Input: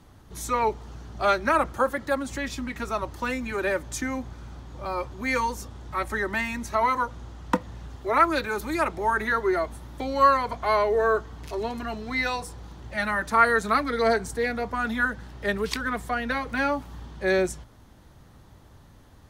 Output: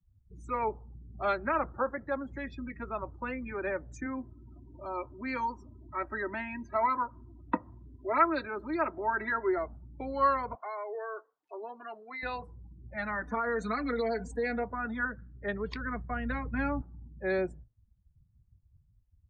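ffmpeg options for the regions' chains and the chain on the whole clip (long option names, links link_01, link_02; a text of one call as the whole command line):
ffmpeg -i in.wav -filter_complex "[0:a]asettb=1/sr,asplit=3[link_01][link_02][link_03];[link_01]atrim=end=4.064[link_04];[link_02]atrim=start=4.06:end=9.58,asetpts=PTS-STARTPTS,afade=type=in:duration=0.004:curve=qsin,afade=type=out:start_time=5.516:duration=0.004:curve=qsin,highpass=90,aecho=1:1:3.1:0.49,atrim=end_sample=243432,acompressor=mode=upward:threshold=-36dB:ratio=2.5:attack=3.2:release=140:knee=2.83:detection=peak[link_05];[link_03]atrim=start=9.576[link_06];[link_04][link_05]acrossfade=duration=0.004:curve1=hsin:curve2=qsin[link_07];[link_07][link_06]acrossfade=duration=0.004:curve1=qsin:curve2=hsin,asettb=1/sr,asplit=3[link_08][link_09][link_10];[link_08]atrim=end=10.554[link_11];[link_09]atrim=start=10.55:end=12.23,asetpts=PTS-STARTPTS,afade=type=in:duration=0.004:curve=qsin,afade=type=out:start_time=1.676:duration=0.004:curve=qsin,highpass=480,acompressor=threshold=-28dB:ratio=4:attack=3.2:release=140:knee=1:detection=peak[link_12];[link_10]atrim=start=12.226[link_13];[link_11][link_12]acrossfade=duration=0.004:curve1=hsin:curve2=qsin[link_14];[link_14][link_13]acrossfade=duration=0.004:curve1=qsin:curve2=hsin,asettb=1/sr,asplit=3[link_15][link_16][link_17];[link_15]atrim=end=13.234[link_18];[link_16]atrim=start=13.23:end=14.64,asetpts=PTS-STARTPTS,afade=type=in:duration=0.004:curve=qsin,afade=type=out:start_time=1.406:duration=0.004:curve=qsin,aecho=1:1:4.1:0.94,atrim=end_sample=62181,acompressor=threshold=-19dB:ratio=12:attack=3.2:release=140:knee=1:detection=peak,adynamicequalizer=threshold=0.0112:dfrequency=2700:dqfactor=0.7:tfrequency=2700:tqfactor=0.7:attack=5:release=100:ratio=0.375:range=2:mode=boostabove:tftype=highshelf[link_19];[link_17]atrim=start=14.636[link_20];[link_18][link_19]acrossfade=duration=0.004:curve1=hsin:curve2=qsin[link_21];[link_21][link_20]acrossfade=duration=0.004:curve1=qsin:curve2=hsin,asettb=1/sr,asplit=3[link_22][link_23][link_24];[link_22]atrim=end=15.514[link_25];[link_23]atrim=start=15.51:end=16.82,asetpts=PTS-STARTPTS,afade=type=in:duration=0.004:curve=qsin,afade=type=out:start_time=1.306:duration=0.004:curve=qsin,agate=range=-33dB:threshold=-36dB:ratio=3:release=100:detection=peak,asubboost=boost=9.5:cutoff=240[link_26];[link_24]atrim=start=16.816[link_27];[link_25][link_26]acrossfade=duration=0.004:curve1=hsin:curve2=qsin[link_28];[link_28][link_27]acrossfade=duration=0.004:curve1=qsin:curve2=hsin,lowpass=frequency=2900:poles=1,afftdn=noise_reduction=36:noise_floor=-37,volume=-7dB" out.wav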